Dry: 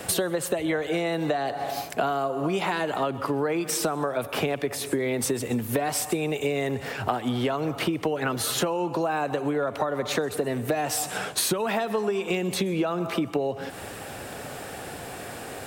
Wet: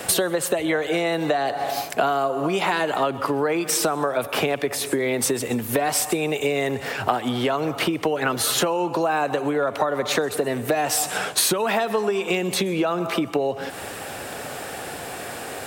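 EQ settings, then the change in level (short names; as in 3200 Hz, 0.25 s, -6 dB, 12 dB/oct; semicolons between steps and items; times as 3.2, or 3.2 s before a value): low shelf 260 Hz -7 dB; +5.5 dB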